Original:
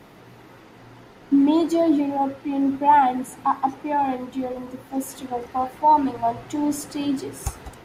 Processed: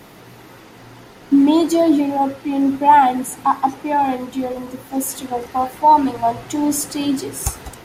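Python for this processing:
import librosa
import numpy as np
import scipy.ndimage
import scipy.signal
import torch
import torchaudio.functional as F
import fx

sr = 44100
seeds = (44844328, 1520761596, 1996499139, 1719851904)

y = fx.high_shelf(x, sr, hz=4400.0, db=8.5)
y = y * 10.0 ** (4.5 / 20.0)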